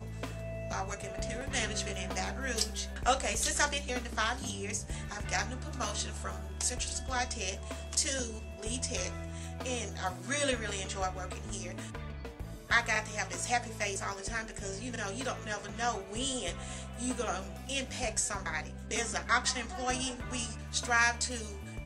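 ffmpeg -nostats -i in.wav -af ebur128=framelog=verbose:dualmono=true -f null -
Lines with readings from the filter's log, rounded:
Integrated loudness:
  I:         -30.8 LUFS
  Threshold: -40.9 LUFS
Loudness range:
  LRA:         3.9 LU
  Threshold: -51.0 LUFS
  LRA low:   -32.9 LUFS
  LRA high:  -29.0 LUFS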